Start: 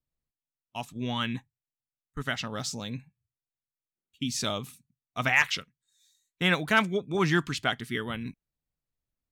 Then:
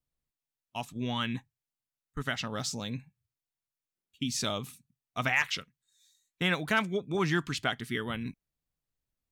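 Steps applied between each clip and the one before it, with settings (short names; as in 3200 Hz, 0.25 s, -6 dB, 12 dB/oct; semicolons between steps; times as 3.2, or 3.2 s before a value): compressor 1.5:1, threshold -30 dBFS, peak gain reduction 5 dB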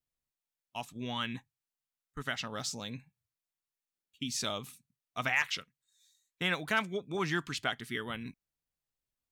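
low shelf 330 Hz -5.5 dB; gain -2 dB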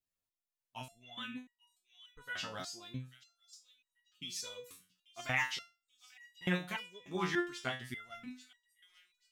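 thin delay 0.838 s, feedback 31%, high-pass 3300 Hz, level -12 dB; stepped resonator 3.4 Hz 92–960 Hz; gain +7 dB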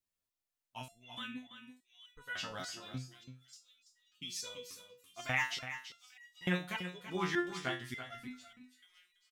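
echo 0.333 s -10.5 dB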